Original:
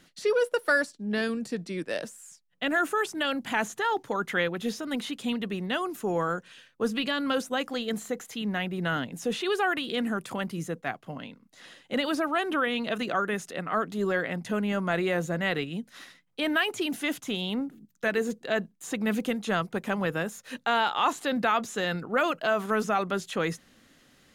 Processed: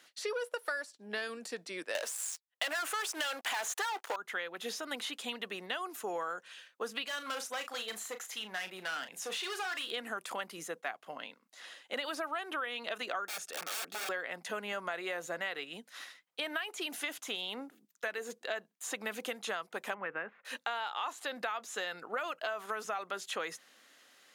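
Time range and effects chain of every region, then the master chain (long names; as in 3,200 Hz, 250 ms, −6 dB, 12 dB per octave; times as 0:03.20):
0:01.95–0:04.16: high-pass filter 470 Hz + leveller curve on the samples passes 5
0:07.04–0:09.91: parametric band 280 Hz −6 dB 2.5 octaves + gain into a clipping stage and back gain 30.5 dB + double-tracking delay 37 ms −10 dB
0:13.26–0:14.09: wrap-around overflow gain 30 dB + notch comb filter 1,000 Hz
0:19.94–0:20.45: Butterworth low-pass 2,400 Hz + dynamic equaliser 660 Hz, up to −5 dB, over −41 dBFS, Q 1
whole clip: high-pass filter 600 Hz 12 dB per octave; downward compressor 10 to 1, threshold −33 dBFS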